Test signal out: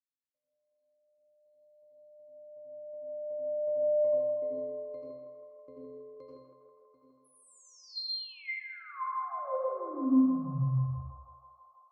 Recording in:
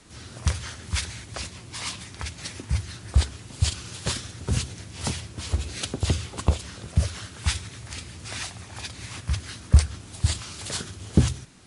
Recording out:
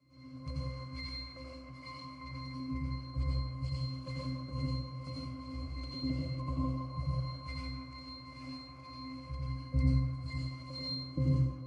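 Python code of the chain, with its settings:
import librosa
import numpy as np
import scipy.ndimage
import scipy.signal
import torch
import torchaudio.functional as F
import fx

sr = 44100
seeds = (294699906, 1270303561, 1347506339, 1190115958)

p1 = fx.spec_quant(x, sr, step_db=15)
p2 = scipy.signal.sosfilt(scipy.signal.butter(2, 150.0, 'highpass', fs=sr, output='sos'), p1)
p3 = fx.high_shelf(p2, sr, hz=4200.0, db=7.0)
p4 = fx.octave_resonator(p3, sr, note='C', decay_s=0.52)
p5 = p4 + fx.echo_banded(p4, sr, ms=162, feedback_pct=85, hz=950.0, wet_db=-4.0, dry=0)
p6 = fx.rev_plate(p5, sr, seeds[0], rt60_s=0.67, hf_ratio=0.75, predelay_ms=75, drr_db=-4.0)
y = F.gain(torch.from_numpy(p6), 5.5).numpy()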